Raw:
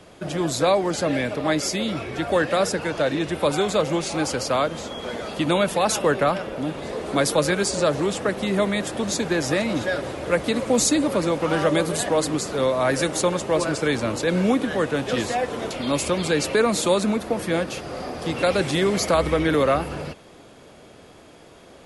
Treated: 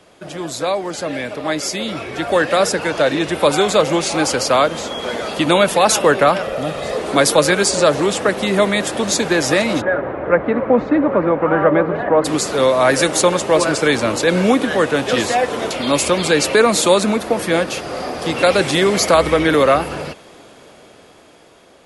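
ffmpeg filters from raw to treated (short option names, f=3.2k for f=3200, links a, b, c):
-filter_complex "[0:a]asettb=1/sr,asplit=3[a][b][c];[a]atrim=end=6.424[d];[b]atrim=start=6.42:end=6.98,asetpts=PTS-STARTPTS,afade=t=in:d=0.004:c=qsin,afade=t=out:st=0.556:d=0.004:c=qsin,aecho=1:1:1.6:0.54,atrim=end_sample=24696[e];[c]atrim=start=6.976[f];[d][e]acrossfade=d=0.004:c1=hsin:c2=qsin[g];[g][f]acrossfade=d=0.004:c1=qsin:c2=hsin,asplit=3[h][i][j];[h]afade=t=out:st=9.8:d=0.02[k];[i]lowpass=f=1.8k:w=0.5412,lowpass=f=1.8k:w=1.3066,afade=t=in:st=9.8:d=0.02,afade=t=out:st=12.24:d=0.02[l];[j]afade=t=in:st=12.24:d=0.02[m];[k][l][m]amix=inputs=3:normalize=0,lowshelf=f=230:g=-8,dynaudnorm=f=570:g=7:m=11.5dB"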